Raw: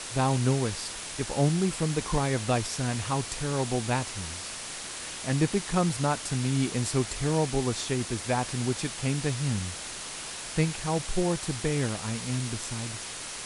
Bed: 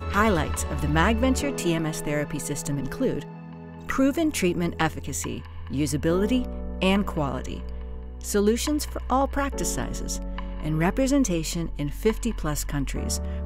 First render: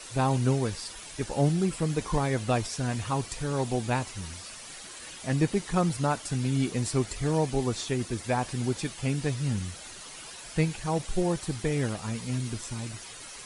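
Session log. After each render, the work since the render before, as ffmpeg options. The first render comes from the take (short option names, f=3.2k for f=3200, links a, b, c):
-af "afftdn=nr=10:nf=-39"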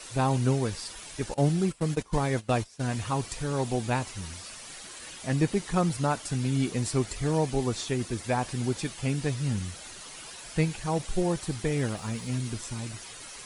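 -filter_complex "[0:a]asettb=1/sr,asplit=3[a][b][c];[a]atrim=end=1.344[d];[b]atrim=start=1.34:end=2.82,asetpts=PTS-STARTPTS,afade=t=in:d=0.004:c=qsin,afade=t=out:st=1.476:d=0.004:c=qsin,agate=range=-18dB:threshold=-32dB:ratio=16:release=100:detection=peak[e];[c]atrim=start=2.816[f];[d][e]acrossfade=d=0.004:c1=hsin:c2=qsin[g];[g][f]acrossfade=d=0.004:c1=qsin:c2=hsin,asettb=1/sr,asplit=3[h][i][j];[h]atrim=end=11.654[k];[i]atrim=start=11.65:end=12.34,asetpts=PTS-STARTPTS,afade=t=in:d=0.004:c=qsin,afade=t=out:st=0.686:d=0.004:c=qsin,aeval=exprs='val(0)*gte(abs(val(0)),0.00188)':c=same[l];[j]atrim=start=12.336[m];[k][l]acrossfade=d=0.004:c1=hsin:c2=qsin[n];[n][m]acrossfade=d=0.004:c1=qsin:c2=hsin"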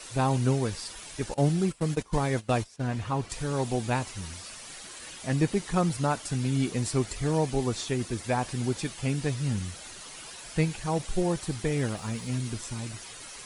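-filter_complex "[0:a]asettb=1/sr,asplit=3[a][b][c];[a]atrim=end=2.764[d];[b]atrim=start=2.76:end=3.3,asetpts=PTS-STARTPTS,afade=t=in:d=0.004:c=qsin,afade=t=out:st=0.536:d=0.004:c=qsin,lowpass=f=2.4k:p=1[e];[c]atrim=start=3.296[f];[d][e]acrossfade=d=0.004:c1=hsin:c2=qsin[g];[g][f]acrossfade=d=0.004:c1=qsin:c2=hsin"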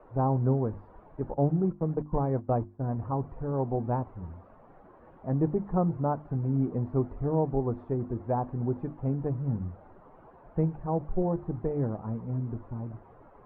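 -af "lowpass=f=1k:w=0.5412,lowpass=f=1k:w=1.3066,bandreject=f=50:t=h:w=6,bandreject=f=100:t=h:w=6,bandreject=f=150:t=h:w=6,bandreject=f=200:t=h:w=6,bandreject=f=250:t=h:w=6,bandreject=f=300:t=h:w=6,bandreject=f=350:t=h:w=6"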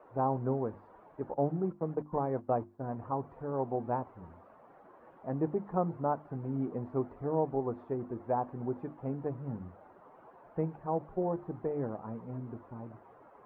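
-af "highpass=f=410:p=1"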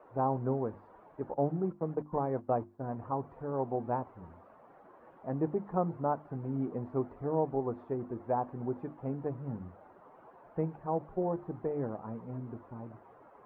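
-af anull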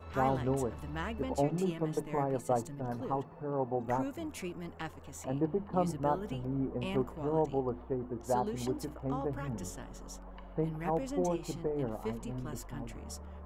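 -filter_complex "[1:a]volume=-17dB[a];[0:a][a]amix=inputs=2:normalize=0"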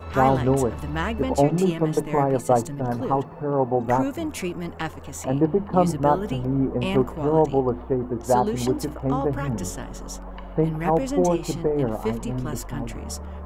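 -af "volume=11.5dB"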